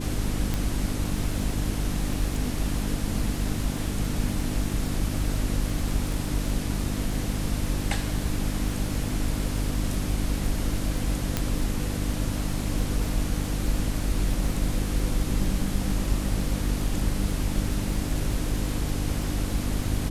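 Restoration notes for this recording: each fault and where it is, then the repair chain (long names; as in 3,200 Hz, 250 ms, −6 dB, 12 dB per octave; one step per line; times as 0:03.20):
surface crackle 45 per second −32 dBFS
mains hum 50 Hz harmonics 6 −31 dBFS
0:00.54: click
0:11.37: click −9 dBFS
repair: click removal
hum removal 50 Hz, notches 6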